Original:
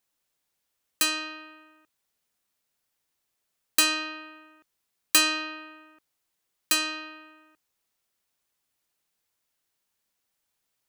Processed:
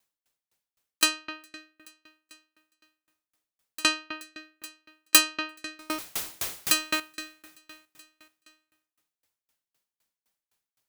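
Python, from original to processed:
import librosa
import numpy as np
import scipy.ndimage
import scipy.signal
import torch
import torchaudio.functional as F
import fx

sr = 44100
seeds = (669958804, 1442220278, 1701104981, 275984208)

y = fx.zero_step(x, sr, step_db=-26.5, at=(5.79, 7.0))
y = fx.echo_feedback(y, sr, ms=427, feedback_pct=48, wet_db=-17.5)
y = fx.tremolo_decay(y, sr, direction='decaying', hz=3.9, depth_db=32)
y = y * librosa.db_to_amplitude(6.5)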